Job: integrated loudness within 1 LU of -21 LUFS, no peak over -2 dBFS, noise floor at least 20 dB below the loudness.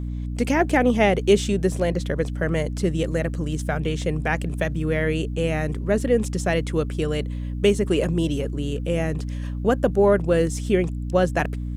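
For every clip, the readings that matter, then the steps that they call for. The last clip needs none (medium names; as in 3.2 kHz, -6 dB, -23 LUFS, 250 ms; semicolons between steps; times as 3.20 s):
hum 60 Hz; highest harmonic 300 Hz; hum level -26 dBFS; loudness -23.0 LUFS; peak level -6.0 dBFS; loudness target -21.0 LUFS
-> de-hum 60 Hz, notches 5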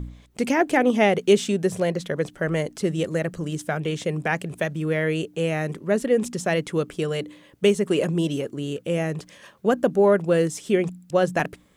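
hum not found; loudness -23.5 LUFS; peak level -6.0 dBFS; loudness target -21.0 LUFS
-> trim +2.5 dB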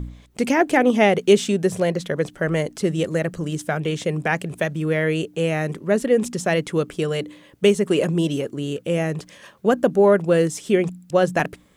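loudness -21.0 LUFS; peak level -3.5 dBFS; noise floor -52 dBFS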